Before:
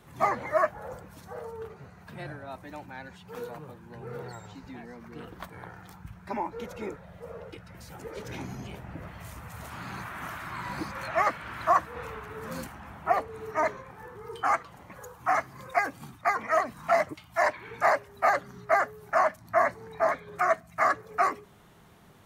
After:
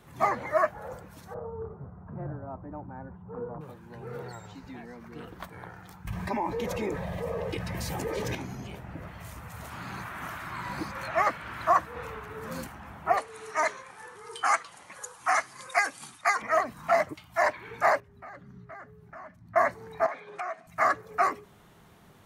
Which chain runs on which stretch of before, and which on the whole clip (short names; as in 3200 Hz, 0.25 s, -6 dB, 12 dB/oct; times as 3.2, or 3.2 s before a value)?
1.34–3.61 Chebyshev low-pass 1200 Hz, order 3 + tilt -2 dB/oct
6.07–8.35 Butterworth band-stop 1400 Hz, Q 6.2 + fast leveller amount 70%
13.17–16.42 steep low-pass 11000 Hz 96 dB/oct + tilt +4 dB/oct
18–19.56 EQ curve 190 Hz 0 dB, 630 Hz -14 dB, 1900 Hz -11 dB, 14000 Hz -22 dB + compressor 3:1, threshold -43 dBFS
20.06–20.67 speaker cabinet 270–8700 Hz, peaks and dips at 800 Hz +6 dB, 2500 Hz +7 dB, 7400 Hz -4 dB + compressor 12:1, threshold -30 dBFS
whole clip: dry